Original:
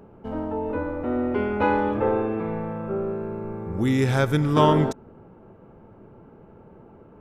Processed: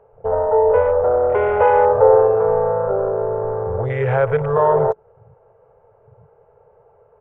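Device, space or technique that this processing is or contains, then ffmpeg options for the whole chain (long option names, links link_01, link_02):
mastering chain: -af "equalizer=frequency=2300:width_type=o:width=0.34:gain=-1.5,acompressor=threshold=-29dB:ratio=1.5,asoftclip=type=tanh:threshold=-14.5dB,tiltshelf=frequency=760:gain=-4.5,alimiter=level_in=19.5dB:limit=-1dB:release=50:level=0:latency=1,afwtdn=0.141,firequalizer=gain_entry='entry(130,0);entry(190,-16);entry(290,-29);entry(440,9);entry(1300,-3);entry(2000,-4);entry(4500,-22)':delay=0.05:min_phase=1,volume=-7.5dB"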